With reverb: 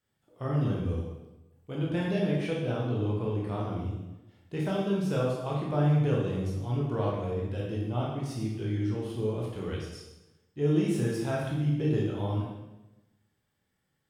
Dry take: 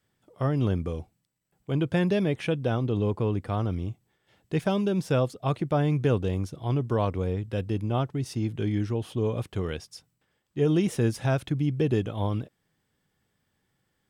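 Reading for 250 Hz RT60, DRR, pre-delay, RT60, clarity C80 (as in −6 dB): 1.1 s, −4.5 dB, 15 ms, 1.0 s, 4.0 dB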